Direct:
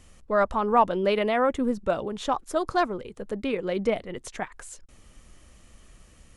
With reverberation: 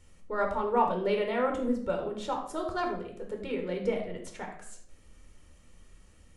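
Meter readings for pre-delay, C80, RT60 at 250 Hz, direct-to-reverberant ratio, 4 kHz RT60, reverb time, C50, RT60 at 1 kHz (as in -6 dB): 12 ms, 10.0 dB, 0.90 s, 2.0 dB, 0.45 s, 0.65 s, 6.5 dB, 0.55 s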